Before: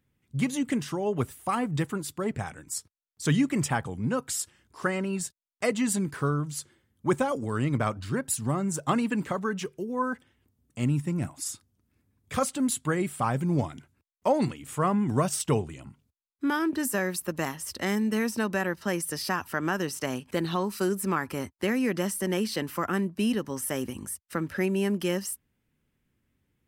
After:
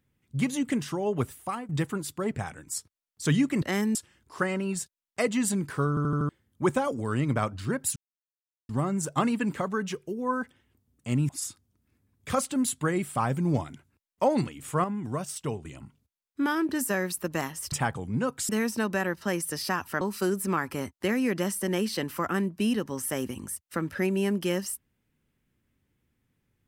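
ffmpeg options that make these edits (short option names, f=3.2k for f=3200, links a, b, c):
-filter_complex "[0:a]asplit=16[a][b][c][d][e][f][g][h][i][j][k][l][m][n][o][p];[a]atrim=end=1.69,asetpts=PTS-STARTPTS,afade=t=out:st=1.36:d=0.33:silence=0.125893[q];[b]atrim=start=1.69:end=3.622,asetpts=PTS-STARTPTS,afade=t=in:d=0.004:c=hsin:silence=0.125893[r];[c]atrim=start=17.758:end=18.092[s];[d]atrim=start=4.388:end=6.412[t];[e]atrim=start=6.328:end=6.412[u];[f]atrim=start=6.328:end=6.412[v];[g]atrim=start=6.328:end=6.412[w];[h]atrim=start=6.328:end=6.412[x];[i]atrim=start=6.728:end=8.4,asetpts=PTS-STARTPTS,afade=t=out:st=1.668:d=0.004:c=hsin,apad=pad_dur=0.73[y];[j]atrim=start=8.4:end=11.002,asetpts=PTS-STARTPTS,afade=t=in:d=0.004:c=hsin[z];[k]atrim=start=11.328:end=14.882[aa];[l]atrim=start=14.878:end=15.692,asetpts=PTS-STARTPTS,volume=-7dB[ab];[m]atrim=start=15.688:end=17.762[ac];[n]atrim=start=3.618:end=4.392[ad];[o]atrim=start=18.088:end=19.612[ae];[p]atrim=start=20.598[af];[q][r]concat=n=2:v=0:a=1[ag];[ag][s]acrossfade=d=0.004:c1=hsin:c2=hsin[ah];[ah][t]acrossfade=d=0.004:c1=hsin:c2=hsin[ai];[ai][u]acrossfade=d=0.004:c1=hsin:c2=hsin[aj];[aj][v]acrossfade=d=0.004:c1=hsin:c2=hsin[ak];[ak][w]acrossfade=d=0.004:c1=hsin:c2=hsin[al];[al][x]acrossfade=d=0.004:c1=hsin:c2=hsin[am];[y][z]concat=n=2:v=0:a=1[an];[am][an]acrossfade=d=0.004:c1=hsin:c2=hsin[ao];[ao][aa]acrossfade=d=0.004:c1=hsin:c2=hsin[ap];[ap][ab]acrossfade=d=0.004:c1=hsin:c2=hsin[aq];[aq][ac]acrossfade=d=0.004:c1=hsin:c2=hsin[ar];[ar][ad]acrossfade=d=0.004:c1=hsin:c2=hsin[as];[as][ae]acrossfade=d=0.004:c1=hsin:c2=hsin[at];[at][af]acrossfade=d=0.004:c1=hsin:c2=hsin"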